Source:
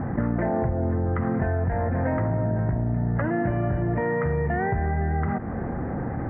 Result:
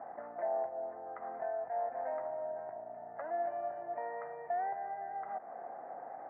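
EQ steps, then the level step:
resonant band-pass 690 Hz, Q 5.6
high-frequency loss of the air 290 metres
first difference
+18.0 dB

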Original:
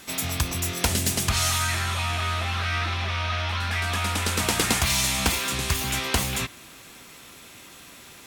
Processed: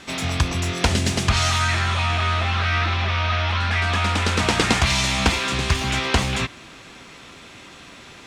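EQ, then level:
high-frequency loss of the air 98 metres
+6.0 dB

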